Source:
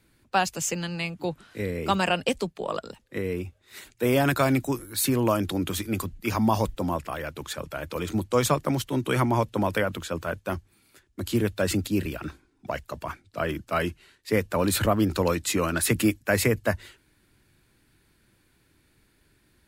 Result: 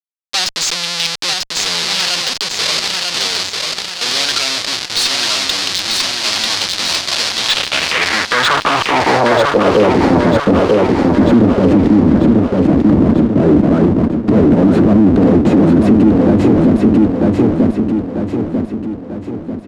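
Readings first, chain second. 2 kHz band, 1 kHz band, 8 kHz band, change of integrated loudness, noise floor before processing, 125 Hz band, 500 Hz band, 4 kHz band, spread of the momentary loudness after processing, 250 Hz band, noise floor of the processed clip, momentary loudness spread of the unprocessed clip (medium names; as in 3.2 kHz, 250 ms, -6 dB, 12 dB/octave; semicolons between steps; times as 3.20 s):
+13.0 dB, +11.5 dB, +12.0 dB, +14.5 dB, -66 dBFS, +12.0 dB, +12.5 dB, +21.0 dB, 7 LU, +17.5 dB, -28 dBFS, 12 LU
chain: bass shelf 500 Hz +10 dB; Schmitt trigger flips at -32 dBFS; band-pass sweep 4.5 kHz -> 260 Hz, 7.29–10.24 s; low-pass 11 kHz 12 dB/octave; Chebyshev shaper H 4 -29 dB, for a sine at -19 dBFS; de-esser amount 75%; feedback delay 943 ms, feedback 49%, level -3 dB; loudness maximiser +22 dB; trim -1 dB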